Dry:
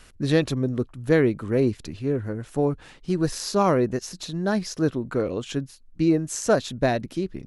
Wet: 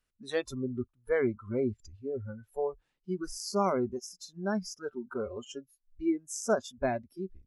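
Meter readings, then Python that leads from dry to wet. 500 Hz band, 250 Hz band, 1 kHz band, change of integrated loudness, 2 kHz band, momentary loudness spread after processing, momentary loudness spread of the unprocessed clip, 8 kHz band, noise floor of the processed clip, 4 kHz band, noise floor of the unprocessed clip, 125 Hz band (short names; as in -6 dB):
-8.0 dB, -10.5 dB, -7.0 dB, -9.0 dB, -8.5 dB, 12 LU, 10 LU, -7.0 dB, -81 dBFS, -10.0 dB, -51 dBFS, -15.0 dB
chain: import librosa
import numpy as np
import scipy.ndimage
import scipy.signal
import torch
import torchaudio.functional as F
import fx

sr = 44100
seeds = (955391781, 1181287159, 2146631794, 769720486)

y = fx.noise_reduce_blind(x, sr, reduce_db=25)
y = F.gain(torch.from_numpy(y), -7.0).numpy()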